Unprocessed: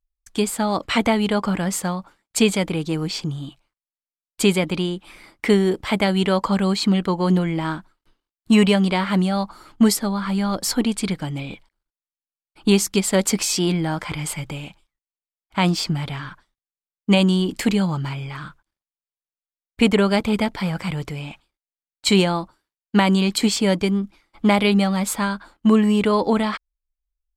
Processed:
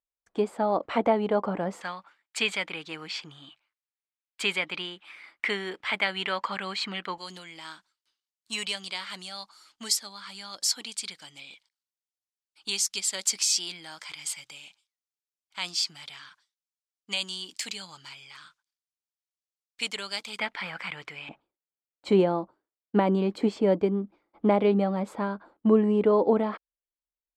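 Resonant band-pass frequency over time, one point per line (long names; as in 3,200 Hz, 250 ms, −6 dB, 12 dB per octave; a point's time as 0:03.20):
resonant band-pass, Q 1.2
580 Hz
from 0:01.81 2,100 Hz
from 0:07.18 5,600 Hz
from 0:20.39 2,000 Hz
from 0:21.29 460 Hz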